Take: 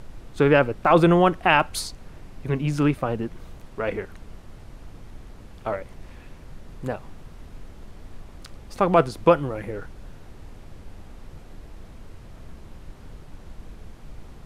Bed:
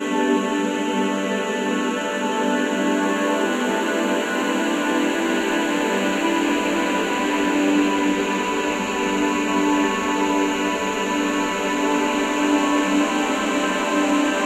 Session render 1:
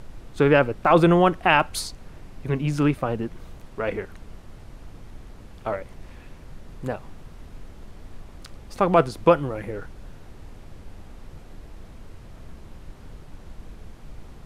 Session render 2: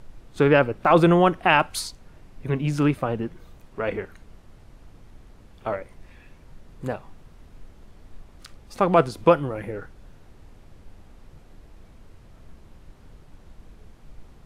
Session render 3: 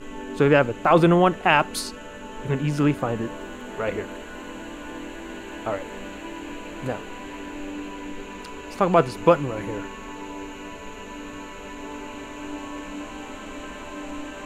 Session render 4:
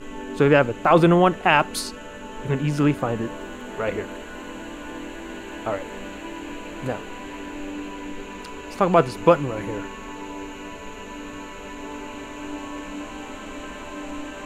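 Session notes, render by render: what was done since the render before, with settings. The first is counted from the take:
no processing that can be heard
noise reduction from a noise print 6 dB
mix in bed −16 dB
level +1 dB; brickwall limiter −2 dBFS, peak gain reduction 1 dB

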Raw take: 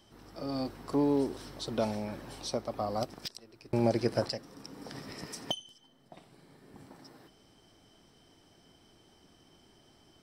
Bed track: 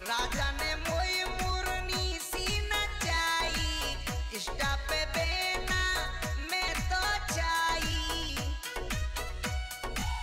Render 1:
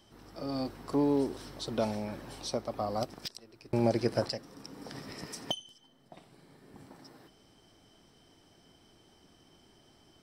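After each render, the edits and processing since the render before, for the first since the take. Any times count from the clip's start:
no processing that can be heard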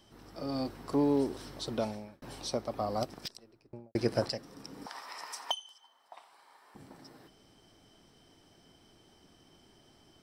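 0:01.69–0:02.22: fade out
0:03.17–0:03.95: fade out and dull
0:04.86–0:06.75: high-pass with resonance 950 Hz, resonance Q 3.2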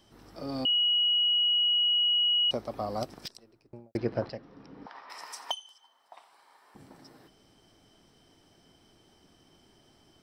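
0:00.65–0:02.51: beep over 2,910 Hz −22 dBFS
0:03.97–0:05.10: high-frequency loss of the air 300 metres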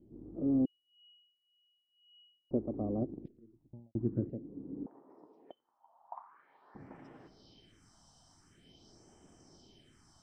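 all-pass phaser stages 4, 0.46 Hz, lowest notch 370–4,100 Hz
low-pass filter sweep 330 Hz → 7,000 Hz, 0:05.30–0:07.82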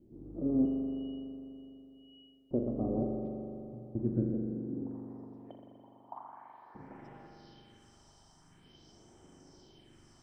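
spring reverb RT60 3.1 s, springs 41 ms, chirp 55 ms, DRR 0.5 dB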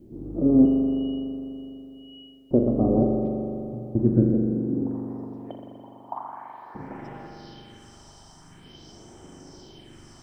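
level +12 dB

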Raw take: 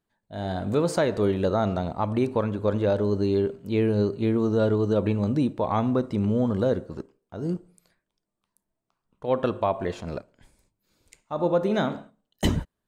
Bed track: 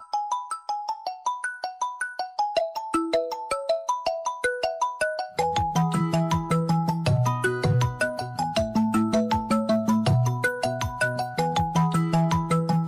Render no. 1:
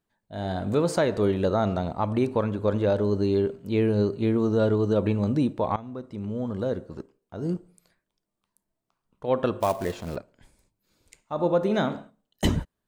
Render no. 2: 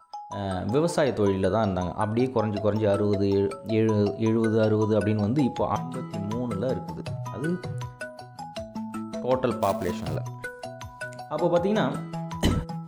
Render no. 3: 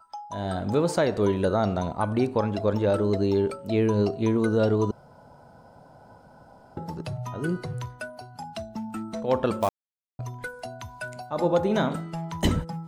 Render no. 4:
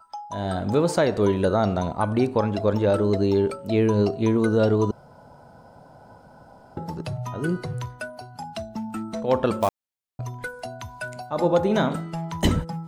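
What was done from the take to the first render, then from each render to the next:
0:05.76–0:07.44: fade in, from −18 dB; 0:09.60–0:10.16: floating-point word with a short mantissa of 2 bits
mix in bed track −11.5 dB
0:04.91–0:06.77: fill with room tone; 0:09.69–0:10.19: silence
level +2.5 dB

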